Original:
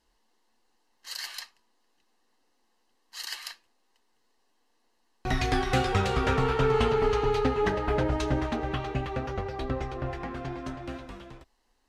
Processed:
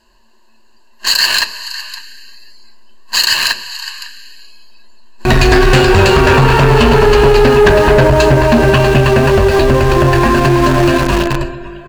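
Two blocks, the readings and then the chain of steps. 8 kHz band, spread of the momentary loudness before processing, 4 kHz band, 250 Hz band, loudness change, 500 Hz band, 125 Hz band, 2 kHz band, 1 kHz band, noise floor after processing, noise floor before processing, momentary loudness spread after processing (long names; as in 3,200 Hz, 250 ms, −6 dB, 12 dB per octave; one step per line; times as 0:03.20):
+22.5 dB, 15 LU, +23.0 dB, +19.5 dB, +19.0 dB, +19.5 dB, +19.5 dB, +21.5 dB, +17.5 dB, −45 dBFS, −71 dBFS, 15 LU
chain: EQ curve with evenly spaced ripples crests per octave 1.4, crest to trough 13 dB
on a send: single-tap delay 553 ms −21.5 dB
on the sum: four-comb reverb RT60 3.3 s, combs from 28 ms, DRR 18 dB
in parallel at −5 dB: bit reduction 6 bits
on the sum: high-shelf EQ 9,500 Hz −8 dB
soft clipping −20 dBFS, distortion −10 dB
hum removal 63.43 Hz, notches 8
noise reduction from a noise print of the clip's start 14 dB
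downward compressor 6 to 1, threshold −36 dBFS, peak gain reduction 13 dB
boost into a limiter +31 dB
level −1 dB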